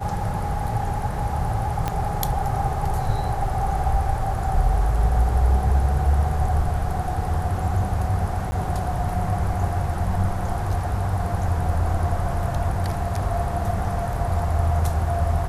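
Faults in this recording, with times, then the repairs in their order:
0:01.88: click −10 dBFS
0:08.51–0:08.52: drop-out 10 ms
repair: click removal
repair the gap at 0:08.51, 10 ms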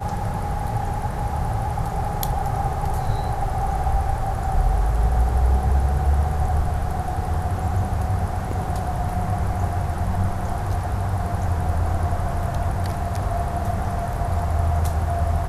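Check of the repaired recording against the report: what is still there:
0:01.88: click

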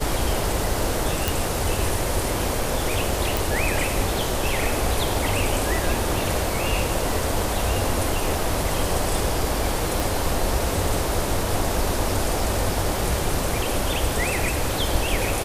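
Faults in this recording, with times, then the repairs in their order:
0:01.28: click
0:03.37: click
0:10.00: click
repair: click removal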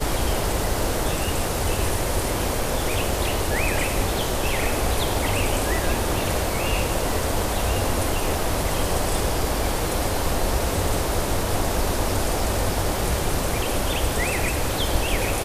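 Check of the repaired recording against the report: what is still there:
0:10.00: click

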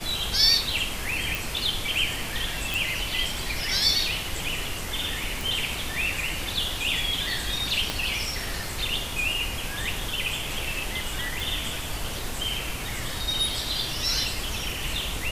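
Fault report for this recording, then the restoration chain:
0:01.35: click
0:02.74: click
0:05.41: click
0:07.90: click −11 dBFS
0:11.40: click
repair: click removal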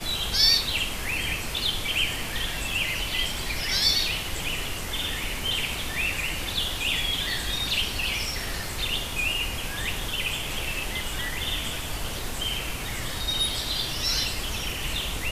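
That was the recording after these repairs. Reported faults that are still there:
0:07.90: click

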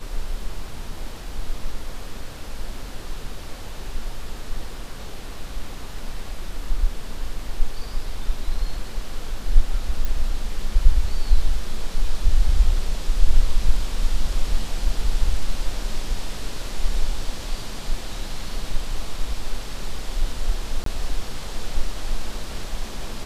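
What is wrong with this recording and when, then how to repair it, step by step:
0:10.05: click
0:20.84–0:20.86: drop-out 23 ms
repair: click removal
repair the gap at 0:20.84, 23 ms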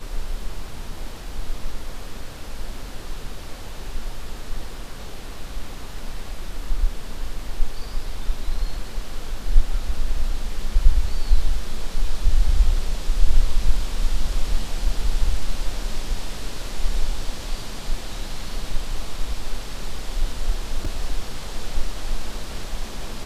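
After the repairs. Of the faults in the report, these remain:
none of them is left

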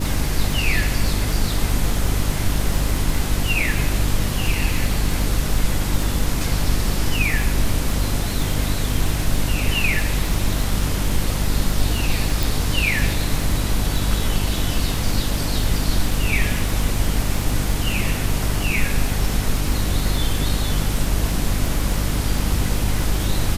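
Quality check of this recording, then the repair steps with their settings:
surface crackle 34 per second −23 dBFS
mains hum 50 Hz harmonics 6 −24 dBFS
0:12.43: click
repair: click removal
hum removal 50 Hz, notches 6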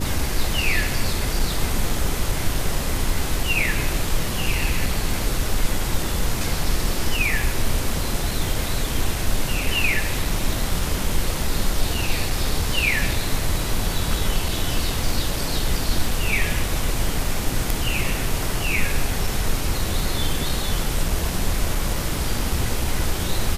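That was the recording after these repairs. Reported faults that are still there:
none of them is left

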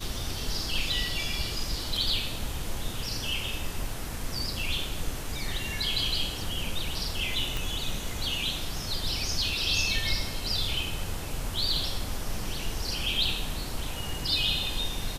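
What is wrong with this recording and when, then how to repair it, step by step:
0:07.57: click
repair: click removal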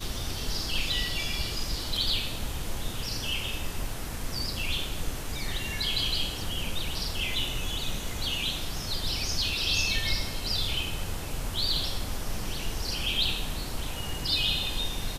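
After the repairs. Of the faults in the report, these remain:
none of them is left

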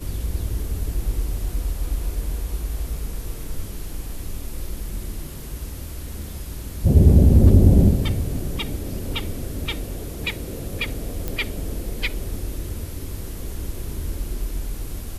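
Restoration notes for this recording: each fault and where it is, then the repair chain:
0:11.28: click −12 dBFS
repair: click removal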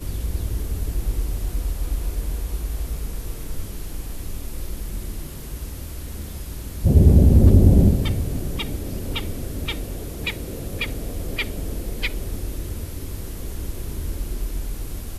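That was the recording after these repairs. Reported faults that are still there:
none of them is left

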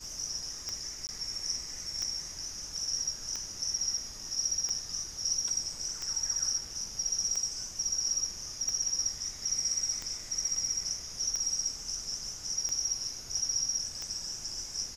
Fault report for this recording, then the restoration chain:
scratch tick 45 rpm −22 dBFS
0:01.07–0:01.09: drop-out 19 ms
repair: click removal
repair the gap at 0:01.07, 19 ms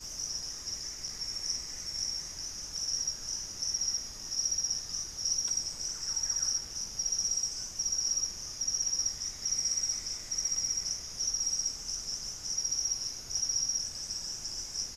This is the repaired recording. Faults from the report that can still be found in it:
none of them is left

